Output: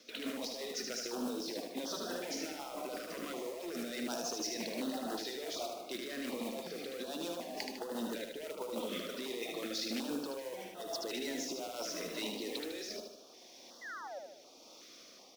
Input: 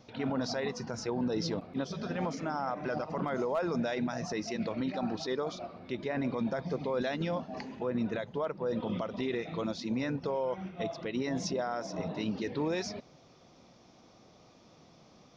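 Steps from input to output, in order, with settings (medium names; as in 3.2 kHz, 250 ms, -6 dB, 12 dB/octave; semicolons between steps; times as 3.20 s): one-sided wavefolder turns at -27.5 dBFS; high-pass 270 Hz 24 dB/octave; tilt EQ +2.5 dB/octave; compressor with a negative ratio -40 dBFS, ratio -1; modulation noise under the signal 14 dB; painted sound fall, 13.81–14.19 s, 520–2100 Hz -39 dBFS; rotary cabinet horn 6 Hz, later 0.8 Hz, at 11.78 s; on a send: feedback delay 76 ms, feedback 50%, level -4.5 dB; on the sum: step-sequenced notch 2.7 Hz 850–2300 Hz; trim +2 dB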